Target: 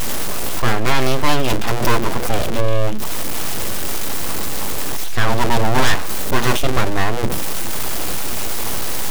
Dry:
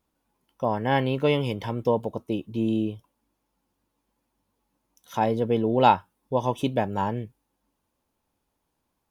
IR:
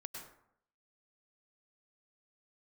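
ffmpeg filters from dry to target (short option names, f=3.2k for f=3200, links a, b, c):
-af "aeval=exprs='val(0)+0.5*0.0944*sgn(val(0))':c=same,bandreject=f=60:t=h:w=6,bandreject=f=120:t=h:w=6,bandreject=f=180:t=h:w=6,bandreject=f=240:t=h:w=6,bandreject=f=300:t=h:w=6,bandreject=f=360:t=h:w=6,aeval=exprs='abs(val(0))':c=same,aeval=exprs='0.668*(cos(1*acos(clip(val(0)/0.668,-1,1)))-cos(1*PI/2))+0.299*(cos(5*acos(clip(val(0)/0.668,-1,1)))-cos(5*PI/2))':c=same,volume=1.5dB"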